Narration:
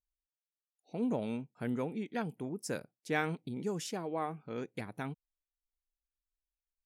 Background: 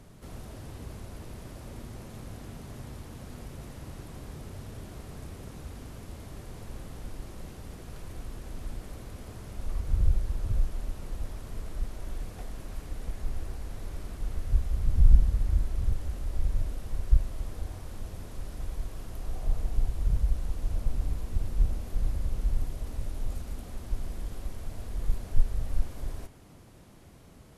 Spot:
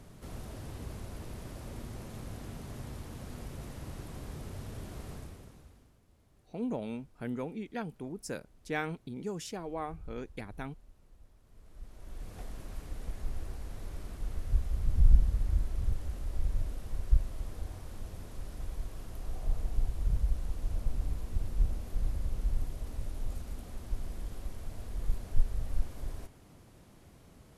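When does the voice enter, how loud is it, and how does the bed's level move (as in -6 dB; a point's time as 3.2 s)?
5.60 s, -1.5 dB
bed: 5.12 s -0.5 dB
6.01 s -23 dB
11.42 s -23 dB
12.37 s -3.5 dB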